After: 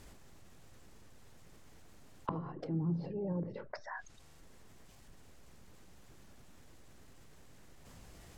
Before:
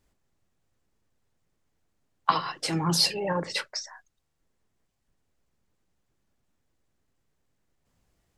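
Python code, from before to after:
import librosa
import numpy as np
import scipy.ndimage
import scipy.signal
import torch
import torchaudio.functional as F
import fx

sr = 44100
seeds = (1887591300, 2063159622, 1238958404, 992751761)

y = fx.env_lowpass_down(x, sr, base_hz=300.0, full_db=-28.5)
y = fx.env_flatten(y, sr, amount_pct=50)
y = y * 10.0 ** (-6.5 / 20.0)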